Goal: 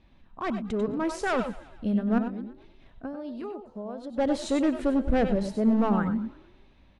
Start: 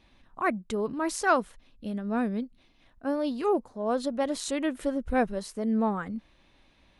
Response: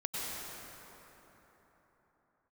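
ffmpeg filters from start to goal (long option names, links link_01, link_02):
-filter_complex "[0:a]asettb=1/sr,asplit=3[link_01][link_02][link_03];[link_01]atrim=end=2.184[link_04];[link_02]atrim=start=2.18:end=4.18,asetpts=PTS-STARTPTS,afade=type=in:duration=0.004:curve=qsin,afade=type=out:start_time=1.996:duration=0.004:curve=qsin,acompressor=threshold=-39dB:ratio=16[link_05];[link_03]atrim=start=4.176[link_06];[link_04][link_05]acrossfade=duration=0.004:curve1=hsin:curve2=qsin[link_07];[link_07][link_06]acrossfade=duration=0.004:curve1=qsin:curve2=hsin,asoftclip=type=hard:threshold=-24.5dB,lowpass=9400,highshelf=frequency=4600:gain=-9.5,asplit=5[link_08][link_09][link_10][link_11][link_12];[link_09]adelay=116,afreqshift=44,volume=-20dB[link_13];[link_10]adelay=232,afreqshift=88,volume=-25dB[link_14];[link_11]adelay=348,afreqshift=132,volume=-30.1dB[link_15];[link_12]adelay=464,afreqshift=176,volume=-35.1dB[link_16];[link_08][link_13][link_14][link_15][link_16]amix=inputs=5:normalize=0[link_17];[1:a]atrim=start_sample=2205,atrim=end_sample=4410[link_18];[link_17][link_18]afir=irnorm=-1:irlink=0,dynaudnorm=framelen=280:gausssize=9:maxgain=5dB,lowshelf=frequency=320:gain=7"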